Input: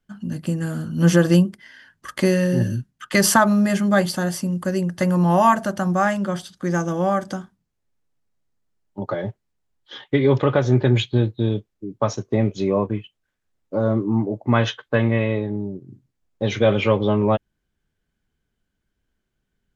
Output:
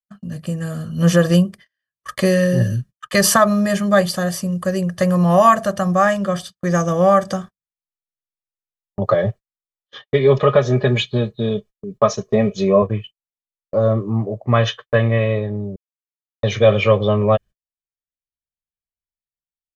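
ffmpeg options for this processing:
ffmpeg -i in.wav -filter_complex "[0:a]asettb=1/sr,asplit=3[link_01][link_02][link_03];[link_01]atrim=end=10.044[link_04];[link_02]atrim=start=10.04:end=12.82,asetpts=PTS-STARTPTS,afade=type=in:duration=0.004:curve=qsin,afade=type=out:start_time=2.776:duration=0.004:curve=qsin,aecho=1:1:4.8:0.65,atrim=end_sample=122598[link_05];[link_03]atrim=start=12.816[link_06];[link_04][link_05]acrossfade=duration=0.004:curve1=hsin:curve2=qsin[link_07];[link_07][link_06]acrossfade=duration=0.004:curve1=qsin:curve2=hsin,asplit=3[link_08][link_09][link_10];[link_08]atrim=end=15.76,asetpts=PTS-STARTPTS,afade=type=out:start_time=15.756:duration=0.004:curve=hsin[link_11];[link_09]atrim=start=15.76:end=16.43,asetpts=PTS-STARTPTS,volume=0[link_12];[link_10]atrim=start=16.43,asetpts=PTS-STARTPTS,afade=type=in:duration=0.004:curve=hsin[link_13];[link_11][link_12][link_13]concat=n=3:v=0:a=1,agate=range=-39dB:threshold=-37dB:ratio=16:detection=peak,aecho=1:1:1.7:0.63,dynaudnorm=framelen=260:gausssize=7:maxgain=11.5dB,volume=-1dB" out.wav

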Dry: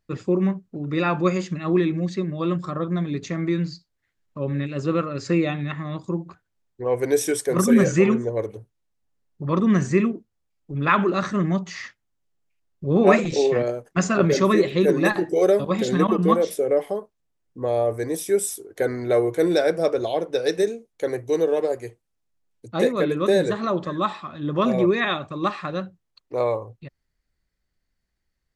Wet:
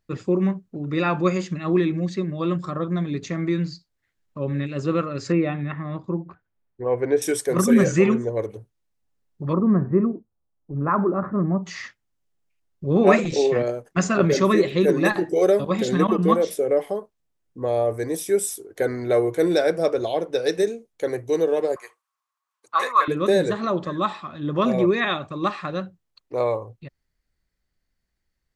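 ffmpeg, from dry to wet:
ffmpeg -i in.wav -filter_complex "[0:a]asettb=1/sr,asplit=3[link_01][link_02][link_03];[link_01]atrim=end=5.324[link_04];[link_02]atrim=start=5.32:end=7.22,asetpts=PTS-STARTPTS,afade=type=in:duration=0.004:curve=qsin,afade=type=out:start_time=1.896:duration=0.004:curve=qsin,lowpass=2200[link_05];[link_03]atrim=start=7.216[link_06];[link_04][link_05]acrossfade=duration=0.004:curve1=hsin:curve2=qsin[link_07];[link_07][link_06]acrossfade=duration=0.004:curve1=qsin:curve2=hsin,asplit=3[link_08][link_09][link_10];[link_08]afade=type=out:start_time=9.52:duration=0.02[link_11];[link_09]lowpass=frequency=1200:width=0.5412,lowpass=frequency=1200:width=1.3066,afade=type=in:start_time=9.52:duration=0.02,afade=type=out:start_time=11.62:duration=0.02[link_12];[link_10]afade=type=in:start_time=11.62:duration=0.02[link_13];[link_11][link_12][link_13]amix=inputs=3:normalize=0,asettb=1/sr,asplit=3[link_14][link_15][link_16];[link_14]atrim=end=21.764[link_17];[link_15]atrim=start=21.76:end=23.08,asetpts=PTS-STARTPTS,afade=type=in:duration=0.004:curve=qsin,afade=type=out:start_time=1.316:duration=0.004:curve=qsin,highpass=frequency=1100:width_type=q:width=12[link_18];[link_16]atrim=start=23.076[link_19];[link_17][link_18]acrossfade=duration=0.004:curve1=hsin:curve2=qsin[link_20];[link_20][link_19]acrossfade=duration=0.004:curve1=qsin:curve2=hsin" out.wav

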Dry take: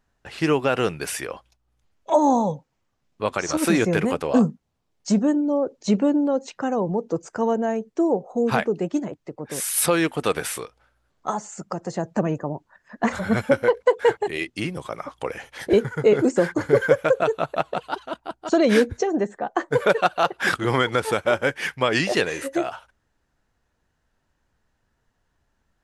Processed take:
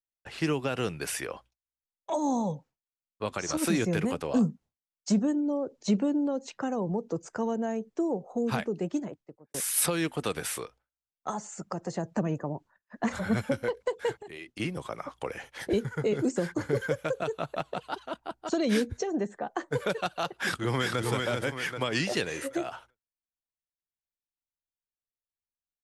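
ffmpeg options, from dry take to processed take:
ffmpeg -i in.wav -filter_complex "[0:a]asettb=1/sr,asplit=3[link_01][link_02][link_03];[link_01]atrim=end=14.204[link_04];[link_02]atrim=start=14.2:end=14.6,asetpts=PTS-STARTPTS,afade=type=in:duration=0.004:curve=qsin,afade=type=out:start_time=0.396:duration=0.004:curve=qsin,acompressor=threshold=-34dB:ratio=6:attack=3.2:release=140:knee=1:detection=peak[link_05];[link_03]atrim=start=14.596[link_06];[link_04][link_05]acrossfade=duration=0.004:curve1=hsin:curve2=qsin[link_07];[link_07][link_06]acrossfade=duration=0.004:curve1=qsin:curve2=hsin,asplit=2[link_08][link_09];[link_09]afade=type=in:start_time=20.4:duration=0.01,afade=type=out:start_time=21.05:duration=0.01,aecho=0:1:390|780|1170|1560|1950:0.707946|0.247781|0.0867234|0.0303532|0.0106236[link_10];[link_08][link_10]amix=inputs=2:normalize=0,asplit=2[link_11][link_12];[link_11]atrim=end=9.54,asetpts=PTS-STARTPTS,afade=type=out:start_time=8.92:duration=0.62[link_13];[link_12]atrim=start=9.54,asetpts=PTS-STARTPTS,afade=type=in:duration=0.004:curve=hsin[link_14];[link_13][link_14]concat=n=2:v=0:a=1,agate=range=-33dB:threshold=-41dB:ratio=3:detection=peak,acrossover=split=260|3000[link_15][link_16][link_17];[link_16]acompressor=threshold=-27dB:ratio=3[link_18];[link_15][link_18][link_17]amix=inputs=3:normalize=0,volume=-4dB" out.wav

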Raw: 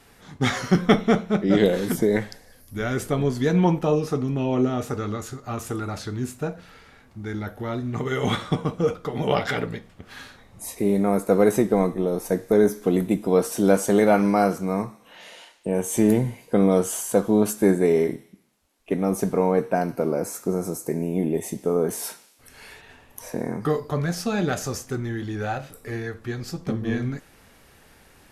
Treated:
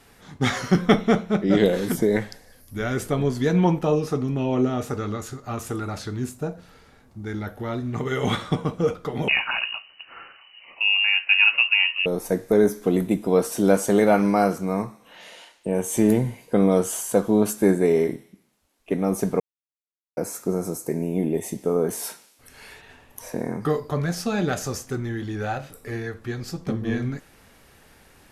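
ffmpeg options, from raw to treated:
ffmpeg -i in.wav -filter_complex "[0:a]asettb=1/sr,asplit=3[link_01][link_02][link_03];[link_01]atrim=end=6.294[link_04];[link_02]atrim=start=6.29:end=7.27,asetpts=PTS-STARTPTS,afade=type=in:duration=0.004:curve=qsin,afade=type=out:start_time=0.976:duration=0.004:curve=qsin,equalizer=frequency=2200:width_type=o:width=1.9:gain=-6.5[link_05];[link_03]atrim=start=7.266[link_06];[link_04][link_05]acrossfade=duration=0.004:curve1=hsin:curve2=qsin[link_07];[link_07][link_06]acrossfade=duration=0.004:curve1=qsin:curve2=hsin,asettb=1/sr,asplit=3[link_08][link_09][link_10];[link_08]atrim=end=9.284[link_11];[link_09]atrim=start=9.28:end=12.06,asetpts=PTS-STARTPTS,afade=type=in:duration=0.004:curve=qsin,afade=type=out:start_time=2.776:duration=0.004:curve=qsin,lowpass=frequency=2600:width_type=q:width=0.5098,lowpass=frequency=2600:width_type=q:width=0.6013,lowpass=frequency=2600:width_type=q:width=0.9,lowpass=frequency=2600:width_type=q:width=2.563,afreqshift=-3000[link_12];[link_10]atrim=start=12.056[link_13];[link_11][link_12]acrossfade=duration=0.004:curve1=hsin:curve2=qsin[link_14];[link_14][link_13]acrossfade=duration=0.004:curve1=qsin:curve2=hsin,asplit=3[link_15][link_16][link_17];[link_15]atrim=end=19.4,asetpts=PTS-STARTPTS,afade=type=out:start_time=19.396:duration=0.004:curve=hsin[link_18];[link_16]atrim=start=19.4:end=20.17,asetpts=PTS-STARTPTS,volume=0[link_19];[link_17]atrim=start=20.17,asetpts=PTS-STARTPTS,afade=type=in:duration=0.004:curve=hsin[link_20];[link_18][link_19][link_20]concat=n=3:v=0:a=1" out.wav

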